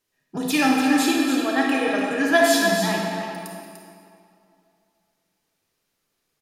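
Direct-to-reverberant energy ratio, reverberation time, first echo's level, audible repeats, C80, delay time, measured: -2.5 dB, 2.5 s, -8.0 dB, 1, 0.0 dB, 0.295 s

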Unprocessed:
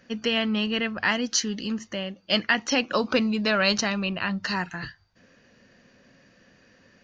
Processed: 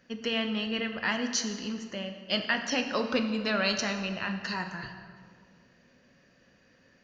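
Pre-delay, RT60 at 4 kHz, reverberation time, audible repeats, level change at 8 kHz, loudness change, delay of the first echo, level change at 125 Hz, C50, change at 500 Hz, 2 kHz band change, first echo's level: 10 ms, 1.3 s, 2.0 s, none, n/a, -5.0 dB, none, -5.5 dB, 7.5 dB, -5.0 dB, -5.0 dB, none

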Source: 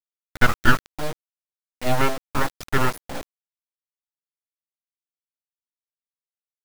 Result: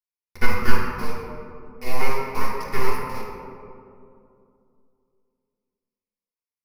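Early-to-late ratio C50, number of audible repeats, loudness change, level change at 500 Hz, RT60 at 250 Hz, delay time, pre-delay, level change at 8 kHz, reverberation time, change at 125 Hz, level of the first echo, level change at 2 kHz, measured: 0.0 dB, none, -4.5 dB, -1.5 dB, 3.1 s, none, 3 ms, -5.5 dB, 2.5 s, -4.0 dB, none, -5.0 dB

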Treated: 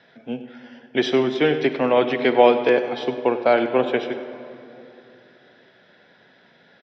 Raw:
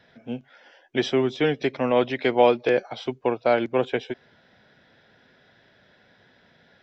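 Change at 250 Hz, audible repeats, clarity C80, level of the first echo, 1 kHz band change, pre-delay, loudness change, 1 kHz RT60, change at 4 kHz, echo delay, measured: +3.5 dB, 1, 9.5 dB, -15.0 dB, +4.0 dB, 35 ms, +3.5 dB, 2.7 s, +3.5 dB, 98 ms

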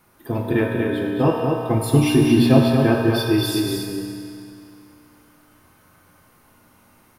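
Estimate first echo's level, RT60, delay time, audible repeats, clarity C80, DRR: -4.5 dB, 2.6 s, 0.235 s, 1, -0.5 dB, -3.0 dB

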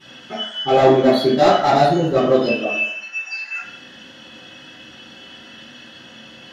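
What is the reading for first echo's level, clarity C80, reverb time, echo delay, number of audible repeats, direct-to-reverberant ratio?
none, 6.5 dB, 0.65 s, none, none, -15.5 dB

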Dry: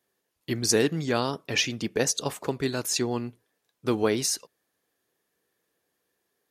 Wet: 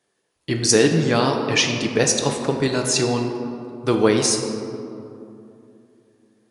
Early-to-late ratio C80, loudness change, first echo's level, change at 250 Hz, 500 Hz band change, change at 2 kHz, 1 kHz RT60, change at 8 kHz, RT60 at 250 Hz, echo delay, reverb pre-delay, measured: 6.0 dB, +7.0 dB, none, +8.0 dB, +8.0 dB, +7.5 dB, 2.6 s, +7.0 dB, 3.3 s, none, 5 ms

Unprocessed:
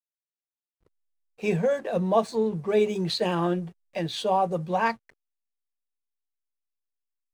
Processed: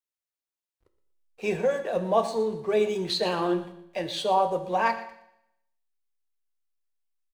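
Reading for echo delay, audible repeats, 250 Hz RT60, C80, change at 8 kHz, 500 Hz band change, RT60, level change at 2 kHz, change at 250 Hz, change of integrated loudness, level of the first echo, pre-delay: 0.119 s, 2, 0.75 s, 12.0 dB, +0.5 dB, -0.5 dB, 0.75 s, +0.5 dB, -3.5 dB, -0.5 dB, -15.5 dB, 5 ms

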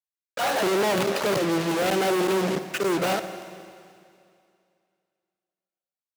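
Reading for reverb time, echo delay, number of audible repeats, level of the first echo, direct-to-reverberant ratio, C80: 2.4 s, none, none, none, 10.0 dB, 11.5 dB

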